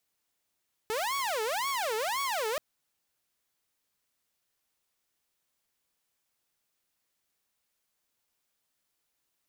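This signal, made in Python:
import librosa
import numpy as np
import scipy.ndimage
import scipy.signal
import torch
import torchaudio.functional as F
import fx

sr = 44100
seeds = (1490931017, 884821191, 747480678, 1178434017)

y = fx.siren(sr, length_s=1.68, kind='wail', low_hz=430.0, high_hz=1120.0, per_s=1.9, wave='saw', level_db=-26.5)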